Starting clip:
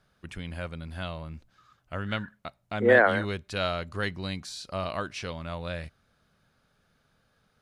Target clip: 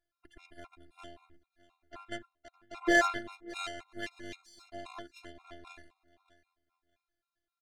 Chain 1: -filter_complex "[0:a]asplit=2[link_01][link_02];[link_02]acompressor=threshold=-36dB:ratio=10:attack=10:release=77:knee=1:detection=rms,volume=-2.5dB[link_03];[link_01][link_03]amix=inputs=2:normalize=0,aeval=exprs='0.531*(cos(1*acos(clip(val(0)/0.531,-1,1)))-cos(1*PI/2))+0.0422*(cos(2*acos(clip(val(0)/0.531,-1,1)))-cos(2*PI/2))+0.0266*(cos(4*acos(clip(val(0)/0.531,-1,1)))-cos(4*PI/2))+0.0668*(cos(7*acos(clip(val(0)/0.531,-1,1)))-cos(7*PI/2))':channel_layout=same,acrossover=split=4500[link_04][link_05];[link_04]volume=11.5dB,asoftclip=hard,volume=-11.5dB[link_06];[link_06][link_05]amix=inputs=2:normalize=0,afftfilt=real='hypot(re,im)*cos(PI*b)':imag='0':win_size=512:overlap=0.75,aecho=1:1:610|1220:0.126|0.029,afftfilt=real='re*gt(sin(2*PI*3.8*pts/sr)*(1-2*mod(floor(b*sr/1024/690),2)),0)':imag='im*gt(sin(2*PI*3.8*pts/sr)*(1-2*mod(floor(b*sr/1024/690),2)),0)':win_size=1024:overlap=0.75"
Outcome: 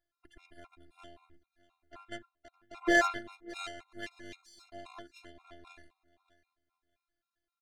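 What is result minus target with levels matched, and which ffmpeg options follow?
downward compressor: peak gain reduction +5.5 dB
-filter_complex "[0:a]asplit=2[link_01][link_02];[link_02]acompressor=threshold=-30dB:ratio=10:attack=10:release=77:knee=1:detection=rms,volume=-2.5dB[link_03];[link_01][link_03]amix=inputs=2:normalize=0,aeval=exprs='0.531*(cos(1*acos(clip(val(0)/0.531,-1,1)))-cos(1*PI/2))+0.0422*(cos(2*acos(clip(val(0)/0.531,-1,1)))-cos(2*PI/2))+0.0266*(cos(4*acos(clip(val(0)/0.531,-1,1)))-cos(4*PI/2))+0.0668*(cos(7*acos(clip(val(0)/0.531,-1,1)))-cos(7*PI/2))':channel_layout=same,acrossover=split=4500[link_04][link_05];[link_04]volume=11.5dB,asoftclip=hard,volume=-11.5dB[link_06];[link_06][link_05]amix=inputs=2:normalize=0,afftfilt=real='hypot(re,im)*cos(PI*b)':imag='0':win_size=512:overlap=0.75,aecho=1:1:610|1220:0.126|0.029,afftfilt=real='re*gt(sin(2*PI*3.8*pts/sr)*(1-2*mod(floor(b*sr/1024/690),2)),0)':imag='im*gt(sin(2*PI*3.8*pts/sr)*(1-2*mod(floor(b*sr/1024/690),2)),0)':win_size=1024:overlap=0.75"

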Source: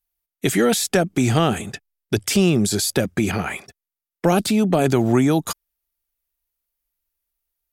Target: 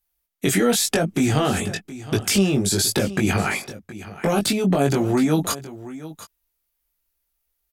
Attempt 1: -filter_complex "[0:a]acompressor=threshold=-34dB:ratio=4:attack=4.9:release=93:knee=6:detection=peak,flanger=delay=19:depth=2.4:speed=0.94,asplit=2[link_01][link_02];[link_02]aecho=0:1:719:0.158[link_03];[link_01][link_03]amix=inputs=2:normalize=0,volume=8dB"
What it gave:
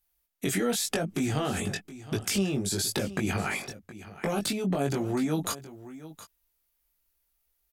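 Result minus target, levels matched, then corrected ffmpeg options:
downward compressor: peak gain reduction +9 dB
-filter_complex "[0:a]acompressor=threshold=-22dB:ratio=4:attack=4.9:release=93:knee=6:detection=peak,flanger=delay=19:depth=2.4:speed=0.94,asplit=2[link_01][link_02];[link_02]aecho=0:1:719:0.158[link_03];[link_01][link_03]amix=inputs=2:normalize=0,volume=8dB"

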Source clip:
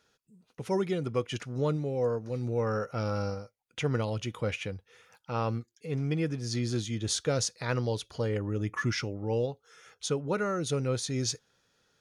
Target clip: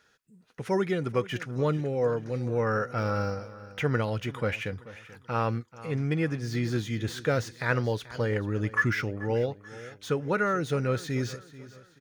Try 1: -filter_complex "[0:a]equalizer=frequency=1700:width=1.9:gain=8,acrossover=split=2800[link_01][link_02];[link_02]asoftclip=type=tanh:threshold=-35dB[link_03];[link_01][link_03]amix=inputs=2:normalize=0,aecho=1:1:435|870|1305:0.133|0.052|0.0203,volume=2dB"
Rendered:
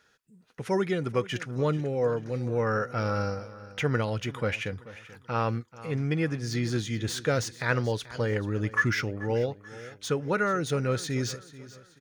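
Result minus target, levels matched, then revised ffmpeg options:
soft clipping: distortion −6 dB
-filter_complex "[0:a]equalizer=frequency=1700:width=1.9:gain=8,acrossover=split=2800[link_01][link_02];[link_02]asoftclip=type=tanh:threshold=-45.5dB[link_03];[link_01][link_03]amix=inputs=2:normalize=0,aecho=1:1:435|870|1305:0.133|0.052|0.0203,volume=2dB"

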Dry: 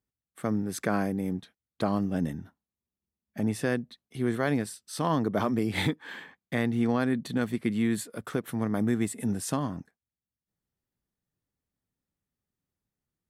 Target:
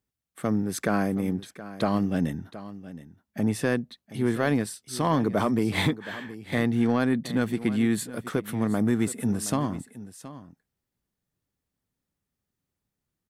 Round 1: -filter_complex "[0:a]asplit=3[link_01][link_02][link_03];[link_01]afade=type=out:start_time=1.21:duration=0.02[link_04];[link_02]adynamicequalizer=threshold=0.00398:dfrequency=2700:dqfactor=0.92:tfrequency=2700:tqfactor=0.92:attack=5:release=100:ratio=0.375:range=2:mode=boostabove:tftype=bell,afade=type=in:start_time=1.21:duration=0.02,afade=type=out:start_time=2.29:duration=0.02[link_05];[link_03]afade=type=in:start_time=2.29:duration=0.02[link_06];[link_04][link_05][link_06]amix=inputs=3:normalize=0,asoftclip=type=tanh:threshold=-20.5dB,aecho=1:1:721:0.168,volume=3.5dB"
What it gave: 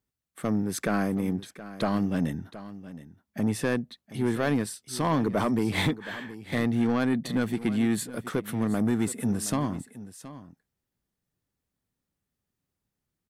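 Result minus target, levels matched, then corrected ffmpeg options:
soft clipping: distortion +9 dB
-filter_complex "[0:a]asplit=3[link_01][link_02][link_03];[link_01]afade=type=out:start_time=1.21:duration=0.02[link_04];[link_02]adynamicequalizer=threshold=0.00398:dfrequency=2700:dqfactor=0.92:tfrequency=2700:tqfactor=0.92:attack=5:release=100:ratio=0.375:range=2:mode=boostabove:tftype=bell,afade=type=in:start_time=1.21:duration=0.02,afade=type=out:start_time=2.29:duration=0.02[link_05];[link_03]afade=type=in:start_time=2.29:duration=0.02[link_06];[link_04][link_05][link_06]amix=inputs=3:normalize=0,asoftclip=type=tanh:threshold=-14dB,aecho=1:1:721:0.168,volume=3.5dB"

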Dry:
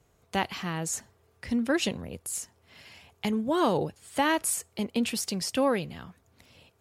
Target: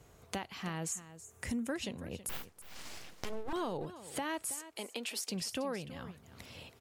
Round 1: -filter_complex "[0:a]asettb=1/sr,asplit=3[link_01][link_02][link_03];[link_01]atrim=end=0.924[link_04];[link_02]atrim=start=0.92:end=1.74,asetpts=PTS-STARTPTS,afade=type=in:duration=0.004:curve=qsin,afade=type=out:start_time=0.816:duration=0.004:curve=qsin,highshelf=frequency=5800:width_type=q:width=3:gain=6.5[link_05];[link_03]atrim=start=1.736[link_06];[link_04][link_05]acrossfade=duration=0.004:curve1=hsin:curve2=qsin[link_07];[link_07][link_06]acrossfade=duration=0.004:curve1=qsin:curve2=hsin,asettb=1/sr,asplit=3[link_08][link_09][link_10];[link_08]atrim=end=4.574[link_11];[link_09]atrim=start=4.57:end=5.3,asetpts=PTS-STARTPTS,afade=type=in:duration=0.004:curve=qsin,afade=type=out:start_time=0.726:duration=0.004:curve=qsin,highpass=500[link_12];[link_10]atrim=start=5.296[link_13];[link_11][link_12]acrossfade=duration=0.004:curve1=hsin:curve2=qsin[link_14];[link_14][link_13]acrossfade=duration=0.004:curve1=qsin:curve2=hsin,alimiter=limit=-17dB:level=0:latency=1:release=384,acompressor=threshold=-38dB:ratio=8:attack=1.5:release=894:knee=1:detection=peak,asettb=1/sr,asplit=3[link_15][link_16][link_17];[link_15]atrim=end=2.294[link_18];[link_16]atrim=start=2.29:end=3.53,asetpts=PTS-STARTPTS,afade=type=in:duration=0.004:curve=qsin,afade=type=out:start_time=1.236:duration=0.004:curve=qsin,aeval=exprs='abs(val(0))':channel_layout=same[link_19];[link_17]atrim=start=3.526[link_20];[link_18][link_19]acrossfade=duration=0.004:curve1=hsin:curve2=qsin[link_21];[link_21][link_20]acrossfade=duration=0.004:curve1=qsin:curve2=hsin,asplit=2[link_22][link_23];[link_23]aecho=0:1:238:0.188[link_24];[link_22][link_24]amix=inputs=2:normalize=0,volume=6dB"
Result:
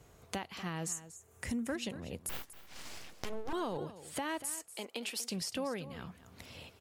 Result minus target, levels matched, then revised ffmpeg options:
echo 87 ms early
-filter_complex "[0:a]asettb=1/sr,asplit=3[link_01][link_02][link_03];[link_01]atrim=end=0.924[link_04];[link_02]atrim=start=0.92:end=1.74,asetpts=PTS-STARTPTS,afade=type=in:duration=0.004:curve=qsin,afade=type=out:start_time=0.816:duration=0.004:curve=qsin,highshelf=frequency=5800:width_type=q:width=3:gain=6.5[link_05];[link_03]atrim=start=1.736[link_06];[link_04][link_05]acrossfade=duration=0.004:curve1=hsin:curve2=qsin[link_07];[link_07][link_06]acrossfade=duration=0.004:curve1=qsin:curve2=hsin,asettb=1/sr,asplit=3[link_08][link_09][link_10];[link_08]atrim=end=4.574[link_11];[link_09]atrim=start=4.57:end=5.3,asetpts=PTS-STARTPTS,afade=type=in:duration=0.004:curve=qsin,afade=type=out:start_time=0.726:duration=0.004:curve=qsin,highpass=500[link_12];[link_10]atrim=start=5.296[link_13];[link_11][link_12]acrossfade=duration=0.004:curve1=hsin:curve2=qsin[link_14];[link_14][link_13]acrossfade=duration=0.004:curve1=qsin:curve2=hsin,alimiter=limit=-17dB:level=0:latency=1:release=384,acompressor=threshold=-38dB:ratio=8:attack=1.5:release=894:knee=1:detection=peak,asettb=1/sr,asplit=3[link_15][link_16][link_17];[link_15]atrim=end=2.294[link_18];[link_16]atrim=start=2.29:end=3.53,asetpts=PTS-STARTPTS,afade=type=in:duration=0.004:curve=qsin,afade=type=out:start_time=1.236:duration=0.004:curve=qsin,aeval=exprs='abs(val(0))':channel_layout=same[link_19];[link_17]atrim=start=3.526[link_20];[link_18][link_19]acrossfade=duration=0.004:curve1=hsin:curve2=qsin[link_21];[link_21][link_20]acrossfade=duration=0.004:curve1=qsin:curve2=hsin,asplit=2[link_22][link_23];[link_23]aecho=0:1:325:0.188[link_24];[link_22][link_24]amix=inputs=2:normalize=0,volume=6dB"

